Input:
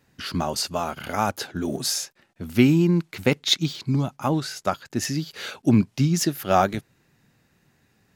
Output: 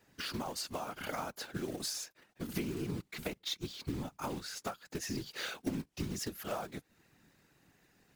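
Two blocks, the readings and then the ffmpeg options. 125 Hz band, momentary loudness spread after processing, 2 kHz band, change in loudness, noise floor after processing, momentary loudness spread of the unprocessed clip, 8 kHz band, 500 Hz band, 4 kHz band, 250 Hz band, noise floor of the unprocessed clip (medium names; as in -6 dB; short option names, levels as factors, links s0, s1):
-19.0 dB, 4 LU, -12.0 dB, -16.0 dB, -75 dBFS, 9 LU, -12.5 dB, -15.5 dB, -13.5 dB, -18.0 dB, -66 dBFS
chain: -af "highpass=150,acrusher=bits=3:mode=log:mix=0:aa=0.000001,acompressor=threshold=0.0251:ratio=10,afftfilt=real='hypot(re,im)*cos(2*PI*random(0))':imag='hypot(re,im)*sin(2*PI*random(1))':win_size=512:overlap=0.75,volume=1.41"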